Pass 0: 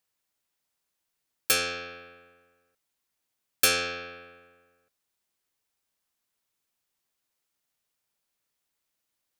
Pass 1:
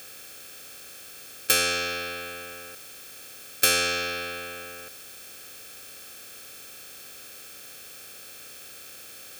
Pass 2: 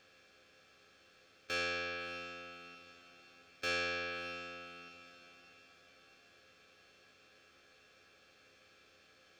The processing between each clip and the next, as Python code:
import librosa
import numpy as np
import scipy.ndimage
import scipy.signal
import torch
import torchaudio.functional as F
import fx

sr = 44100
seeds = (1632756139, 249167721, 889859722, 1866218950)

y1 = fx.bin_compress(x, sr, power=0.4)
y2 = fx.air_absorb(y1, sr, metres=180.0)
y2 = fx.resonator_bank(y2, sr, root=37, chord='major', decay_s=0.22)
y2 = fx.echo_diffused(y2, sr, ms=596, feedback_pct=44, wet_db=-13.5)
y2 = F.gain(torch.from_numpy(y2), -4.5).numpy()